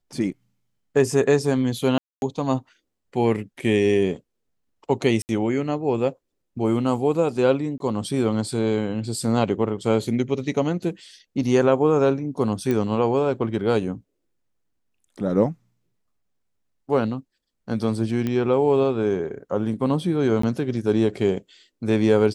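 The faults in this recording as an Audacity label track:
1.980000	2.220000	drop-out 241 ms
5.220000	5.290000	drop-out 69 ms
7.780000	7.800000	drop-out 22 ms
12.710000	12.710000	click −12 dBFS
18.270000	18.270000	click −14 dBFS
20.420000	20.430000	drop-out 14 ms

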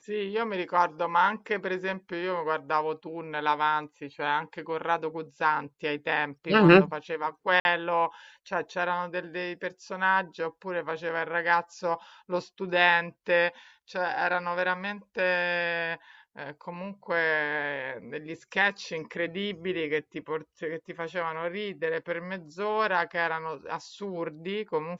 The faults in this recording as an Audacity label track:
7.600000	7.650000	drop-out 51 ms

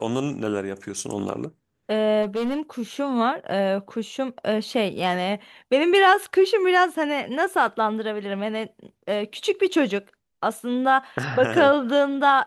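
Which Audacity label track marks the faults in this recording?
2.220000	2.600000	clipping −21.5 dBFS

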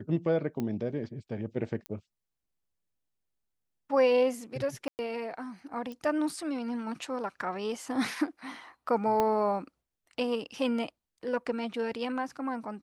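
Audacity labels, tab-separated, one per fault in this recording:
0.600000	0.600000	click −21 dBFS
1.860000	1.860000	click −23 dBFS
4.880000	4.990000	drop-out 109 ms
5.920000	5.920000	click −29 dBFS
9.200000	9.200000	click −14 dBFS

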